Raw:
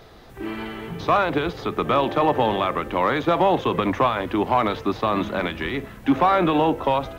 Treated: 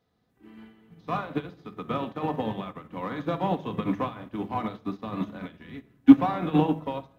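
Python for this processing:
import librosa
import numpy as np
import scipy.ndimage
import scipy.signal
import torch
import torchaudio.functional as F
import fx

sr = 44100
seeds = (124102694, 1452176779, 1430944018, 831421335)

y = scipy.signal.sosfilt(scipy.signal.butter(2, 130.0, 'highpass', fs=sr, output='sos'), x)
y = fx.bass_treble(y, sr, bass_db=12, treble_db=2)
y = fx.room_shoebox(y, sr, seeds[0], volume_m3=2000.0, walls='furnished', distance_m=1.9)
y = fx.upward_expand(y, sr, threshold_db=-26.0, expansion=2.5)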